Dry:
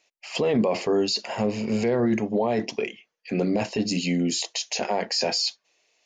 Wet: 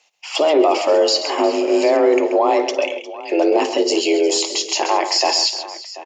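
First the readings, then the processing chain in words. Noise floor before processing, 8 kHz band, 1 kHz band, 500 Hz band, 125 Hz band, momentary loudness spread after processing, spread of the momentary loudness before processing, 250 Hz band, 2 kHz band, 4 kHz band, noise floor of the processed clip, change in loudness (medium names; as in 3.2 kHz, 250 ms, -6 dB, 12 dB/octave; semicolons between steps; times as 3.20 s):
-78 dBFS, +8.5 dB, +12.5 dB, +10.0 dB, under -20 dB, 8 LU, 7 LU, +3.5 dB, +7.5 dB, +8.0 dB, -37 dBFS, +8.0 dB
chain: multi-tap echo 55/133/357/736 ms -15.5/-10/-17.5/-16.5 dB; frequency shift +150 Hz; trim +7.5 dB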